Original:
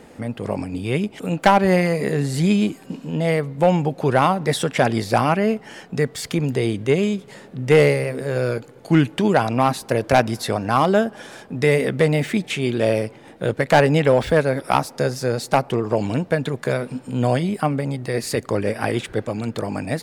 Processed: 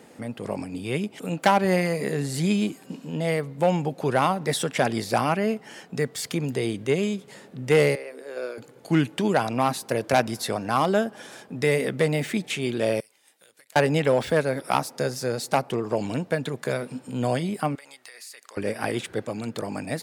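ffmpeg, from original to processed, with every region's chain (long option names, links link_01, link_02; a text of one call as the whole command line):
ffmpeg -i in.wav -filter_complex "[0:a]asettb=1/sr,asplit=3[link_01][link_02][link_03];[link_01]atrim=end=7.954[link_04];[link_02]atrim=start=7.95:end=8.58,asetpts=PTS-STARTPTS,afade=type=in:duration=0.004:curve=qsin,afade=type=out:start_time=0.626:duration=0.004:curve=qsin,acrossover=split=5100[link_05][link_06];[link_06]acompressor=threshold=-49dB:ratio=4:attack=1:release=60[link_07];[link_05][link_07]amix=inputs=2:normalize=0,agate=range=-7dB:threshold=-21dB:ratio=16:release=100:detection=peak,highpass=frequency=290:width=0.5412,highpass=frequency=290:width=1.3066[link_08];[link_03]atrim=start=8.576[link_09];[link_04][link_08]acrossfade=duration=0.004:curve1=hsin:curve2=qsin[link_10];[link_10][link_09]acrossfade=duration=0.004:curve1=qsin:curve2=hsin,asettb=1/sr,asplit=3[link_11][link_12][link_13];[link_11]atrim=end=13.004[link_14];[link_12]atrim=start=13:end=13.76,asetpts=PTS-STARTPTS,afade=type=in:duration=0.004:curve=qsin,afade=type=out:start_time=0.756:duration=0.004:curve=qsin,aderivative,acompressor=threshold=-47dB:ratio=12:attack=3.2:release=140:knee=1:detection=peak[link_15];[link_13]atrim=start=13.756[link_16];[link_14][link_15]acrossfade=duration=0.004:curve1=hsin:curve2=qsin[link_17];[link_17][link_16]acrossfade=duration=0.004:curve1=qsin:curve2=hsin,asettb=1/sr,asplit=3[link_18][link_19][link_20];[link_18]atrim=end=17.754[link_21];[link_19]atrim=start=17.75:end=18.57,asetpts=PTS-STARTPTS,afade=type=in:duration=0.004:curve=qsin,afade=type=out:start_time=0.816:duration=0.004:curve=qsin,highpass=1300,acompressor=threshold=-37dB:ratio=12:attack=3.2:release=140:knee=1:detection=peak[link_22];[link_20]atrim=start=18.566[link_23];[link_21][link_22]acrossfade=duration=0.004:curve1=hsin:curve2=qsin[link_24];[link_24][link_23]acrossfade=duration=0.004:curve1=qsin:curve2=hsin,highpass=120,highshelf=frequency=4500:gain=5.5,volume=-5dB" out.wav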